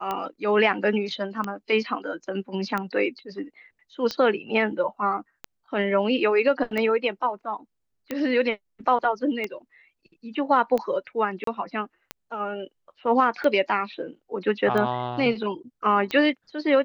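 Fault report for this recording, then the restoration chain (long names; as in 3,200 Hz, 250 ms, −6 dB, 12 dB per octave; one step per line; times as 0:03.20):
scratch tick 45 rpm −15 dBFS
0:11.44–0:11.47: drop-out 33 ms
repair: click removal
repair the gap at 0:11.44, 33 ms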